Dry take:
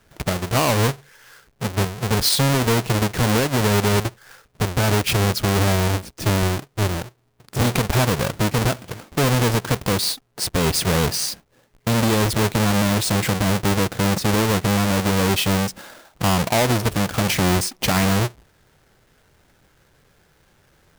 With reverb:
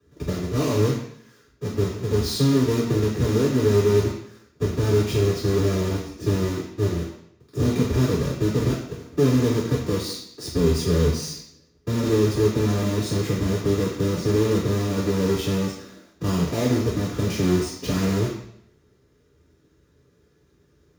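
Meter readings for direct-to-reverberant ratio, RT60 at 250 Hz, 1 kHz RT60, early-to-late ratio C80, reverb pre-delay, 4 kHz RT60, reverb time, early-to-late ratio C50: −12.0 dB, 0.70 s, 0.70 s, 9.0 dB, 3 ms, 0.70 s, 0.70 s, 5.5 dB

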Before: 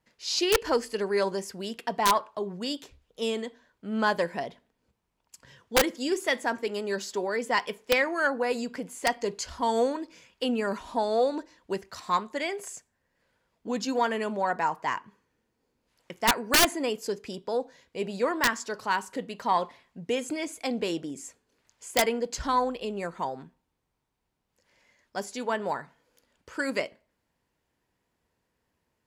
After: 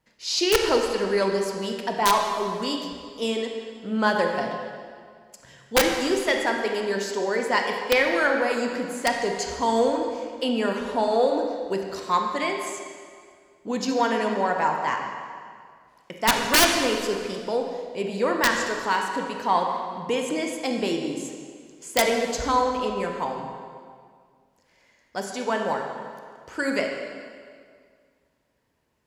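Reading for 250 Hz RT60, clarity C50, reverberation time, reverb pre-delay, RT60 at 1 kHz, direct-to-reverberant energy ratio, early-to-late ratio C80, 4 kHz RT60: 2.1 s, 3.5 dB, 2.0 s, 22 ms, 2.0 s, 2.5 dB, 5.0 dB, 1.7 s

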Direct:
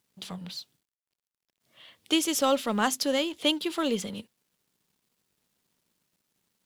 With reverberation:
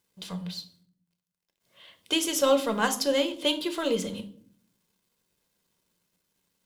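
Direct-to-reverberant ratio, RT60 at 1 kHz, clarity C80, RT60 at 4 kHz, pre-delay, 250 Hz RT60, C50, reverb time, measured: 7.5 dB, 0.45 s, 18.5 dB, 0.40 s, 4 ms, 0.90 s, 14.0 dB, 0.55 s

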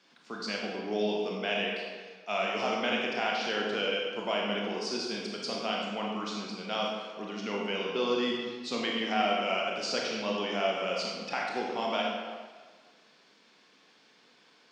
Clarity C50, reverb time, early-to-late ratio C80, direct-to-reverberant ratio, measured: 0.5 dB, 1.5 s, 2.5 dB, −2.5 dB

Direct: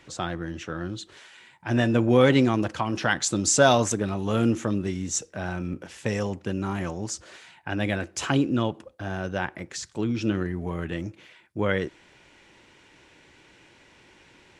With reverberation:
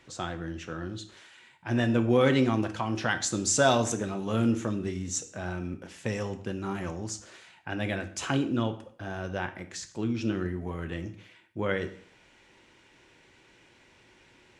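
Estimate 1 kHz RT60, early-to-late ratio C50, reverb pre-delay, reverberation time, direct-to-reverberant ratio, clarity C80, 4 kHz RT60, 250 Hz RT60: 0.55 s, 13.5 dB, 6 ms, 0.55 s, 8.5 dB, 17.0 dB, 0.50 s, 0.60 s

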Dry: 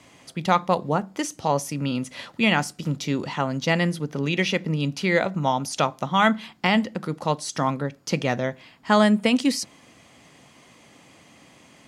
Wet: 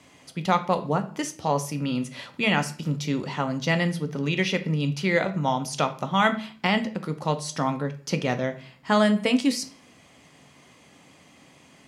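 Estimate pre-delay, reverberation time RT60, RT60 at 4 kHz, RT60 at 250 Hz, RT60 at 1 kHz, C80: 5 ms, 0.45 s, 0.40 s, 0.55 s, 0.40 s, 19.0 dB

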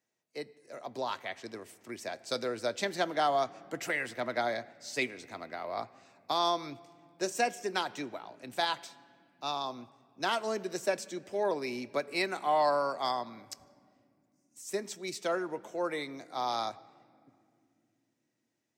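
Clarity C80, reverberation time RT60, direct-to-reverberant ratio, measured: 20.0 dB, non-exponential decay, 11.0 dB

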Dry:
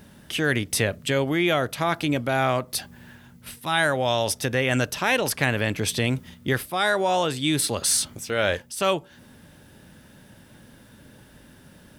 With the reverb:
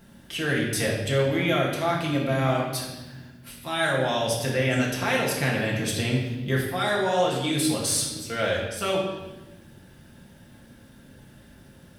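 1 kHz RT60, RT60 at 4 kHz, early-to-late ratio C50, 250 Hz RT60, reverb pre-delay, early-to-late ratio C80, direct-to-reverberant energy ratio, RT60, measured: 1.0 s, 1.0 s, 3.0 dB, 2.1 s, 4 ms, 5.0 dB, −4.0 dB, 1.2 s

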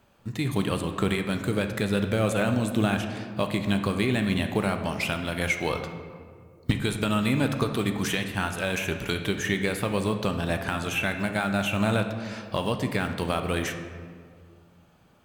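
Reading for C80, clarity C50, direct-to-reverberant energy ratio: 9.5 dB, 7.5 dB, 6.0 dB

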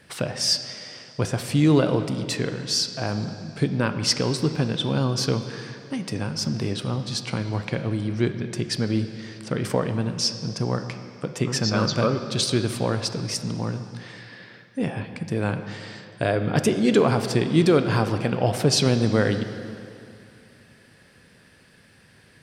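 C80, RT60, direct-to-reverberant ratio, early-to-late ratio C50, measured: 10.0 dB, 2.6 s, 8.0 dB, 9.0 dB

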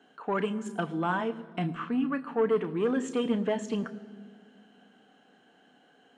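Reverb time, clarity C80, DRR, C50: 2.0 s, 17.5 dB, 9.5 dB, 17.0 dB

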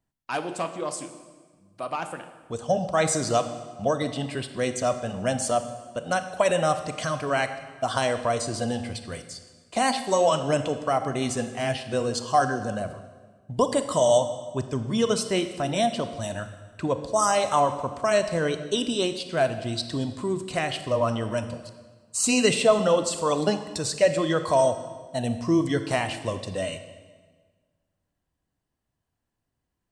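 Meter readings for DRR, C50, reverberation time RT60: 9.0 dB, 10.5 dB, 1.5 s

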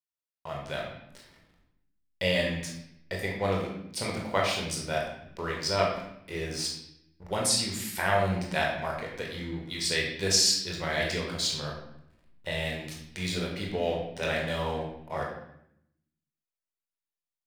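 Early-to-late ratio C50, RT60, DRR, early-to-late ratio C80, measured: 3.5 dB, 0.75 s, −2.0 dB, 6.5 dB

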